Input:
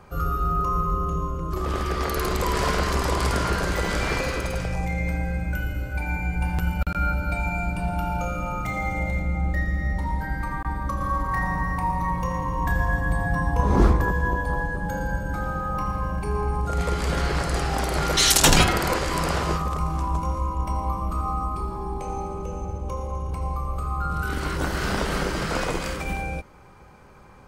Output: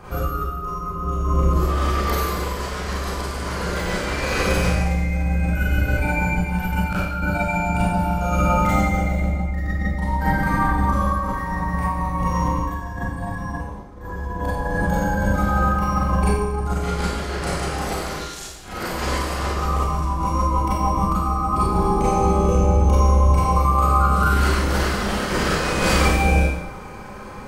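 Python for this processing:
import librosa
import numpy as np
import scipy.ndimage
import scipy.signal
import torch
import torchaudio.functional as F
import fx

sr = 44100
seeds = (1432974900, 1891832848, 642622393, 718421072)

y = fx.highpass(x, sr, hz=160.0, slope=6, at=(23.33, 24.21))
y = fx.over_compress(y, sr, threshold_db=-29.0, ratio=-0.5)
y = fx.rev_schroeder(y, sr, rt60_s=0.83, comb_ms=30, drr_db=-8.5)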